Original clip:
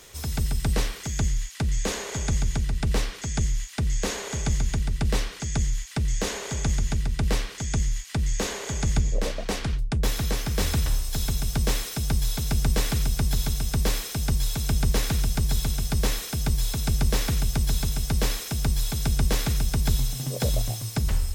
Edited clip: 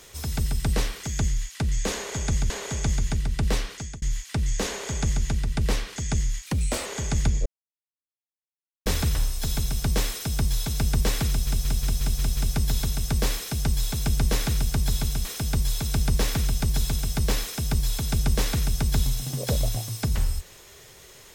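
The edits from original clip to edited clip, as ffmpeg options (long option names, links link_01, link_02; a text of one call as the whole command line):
ffmpeg -i in.wav -filter_complex "[0:a]asplit=14[link_01][link_02][link_03][link_04][link_05][link_06][link_07][link_08][link_09][link_10][link_11][link_12][link_13][link_14];[link_01]atrim=end=2.502[link_15];[link_02]atrim=start=4.118:end=5.64,asetpts=PTS-STARTPTS,afade=type=out:start_time=1.222:duration=0.3[link_16];[link_03]atrim=start=5.64:end=8.084,asetpts=PTS-STARTPTS,afade=type=in:duration=0.004:curve=hsin[link_17];[link_04]atrim=start=8.08:end=8.57,asetpts=PTS-STARTPTS,asetrate=54243,aresample=44100,atrim=end_sample=17568,asetpts=PTS-STARTPTS[link_18];[link_05]atrim=start=8.566:end=9.17,asetpts=PTS-STARTPTS,afade=type=out:start_time=0.6:duration=0.004:curve=hsin[link_19];[link_06]atrim=start=9.17:end=10.57,asetpts=PTS-STARTPTS,volume=0[link_20];[link_07]atrim=start=10.57:end=13.182,asetpts=PTS-STARTPTS,afade=type=in:duration=0.004:curve=hsin[link_21];[link_08]atrim=start=12.998:end=13.182[link_22];[link_09]atrim=start=12.998:end=13.182[link_23];[link_10]atrim=start=12.998:end=13.182[link_24];[link_11]atrim=start=12.998:end=13.182[link_25];[link_12]atrim=start=12.998:end=13.182[link_26];[link_13]atrim=start=12.998:end=15.882[link_27];[link_14]atrim=start=16.178[link_28];[link_16][link_17]concat=n=2:v=0:a=1[link_29];[link_15][link_29]acrossfade=duration=0.004:curve1=hsin:curve2=hsin[link_30];[link_30][link_18]acrossfade=duration=0.004:curve1=hsin:curve2=hsin[link_31];[link_19][link_20][link_21]concat=n=3:v=0:a=1[link_32];[link_31][link_32]acrossfade=duration=0.004:curve1=hsin:curve2=hsin[link_33];[link_33][link_22]acrossfade=duration=0.004:curve1=hsin:curve2=hsin[link_34];[link_34][link_23]acrossfade=duration=0.004:curve1=hsin:curve2=hsin[link_35];[link_35][link_24]acrossfade=duration=0.004:curve1=hsin:curve2=hsin[link_36];[link_36][link_25]acrossfade=duration=0.004:curve1=hsin:curve2=hsin[link_37];[link_37][link_26]acrossfade=duration=0.004:curve1=hsin:curve2=hsin[link_38];[link_38][link_27]acrossfade=duration=0.004:curve1=hsin:curve2=hsin[link_39];[link_39][link_28]acrossfade=duration=0.004:curve1=hsin:curve2=hsin" out.wav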